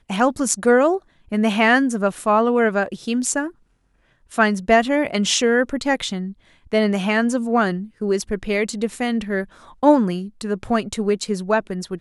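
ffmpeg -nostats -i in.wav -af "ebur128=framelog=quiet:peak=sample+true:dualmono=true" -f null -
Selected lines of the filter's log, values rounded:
Integrated loudness:
  I:         -17.0 LUFS
  Threshold: -27.3 LUFS
Loudness range:
  LRA:         3.0 LU
  Threshold: -37.5 LUFS
  LRA low:   -18.7 LUFS
  LRA high:  -15.7 LUFS
Sample peak:
  Peak:       -2.2 dBFS
True peak:
  Peak:       -2.2 dBFS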